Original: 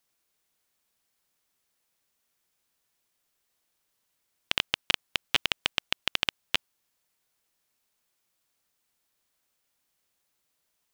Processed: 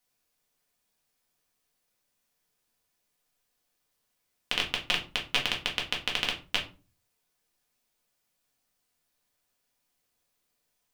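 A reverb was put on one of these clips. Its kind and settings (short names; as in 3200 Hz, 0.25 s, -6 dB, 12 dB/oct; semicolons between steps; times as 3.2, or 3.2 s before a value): shoebox room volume 170 m³, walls furnished, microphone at 1.9 m; gain -4 dB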